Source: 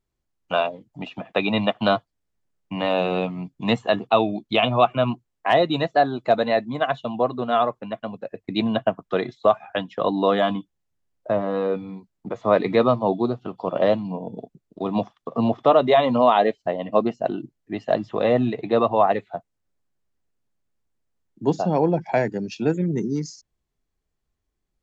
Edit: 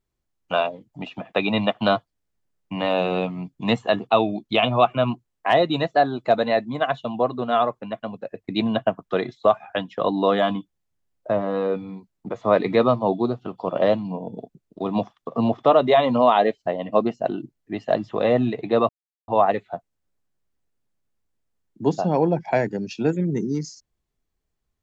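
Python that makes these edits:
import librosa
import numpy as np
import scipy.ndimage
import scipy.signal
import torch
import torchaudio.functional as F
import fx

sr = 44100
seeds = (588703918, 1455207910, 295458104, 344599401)

y = fx.edit(x, sr, fx.insert_silence(at_s=18.89, length_s=0.39), tone=tone)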